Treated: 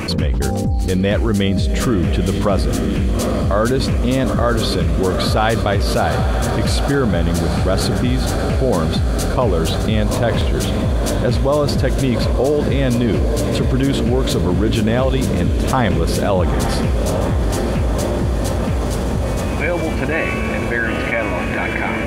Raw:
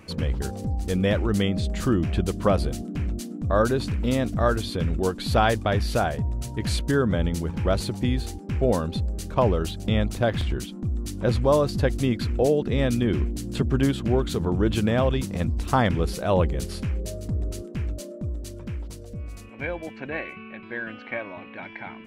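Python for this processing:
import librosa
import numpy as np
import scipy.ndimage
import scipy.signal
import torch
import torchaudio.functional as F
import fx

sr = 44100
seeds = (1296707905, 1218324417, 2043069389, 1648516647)

y = fx.echo_diffused(x, sr, ms=847, feedback_pct=74, wet_db=-11)
y = fx.env_flatten(y, sr, amount_pct=70)
y = y * librosa.db_to_amplitude(2.5)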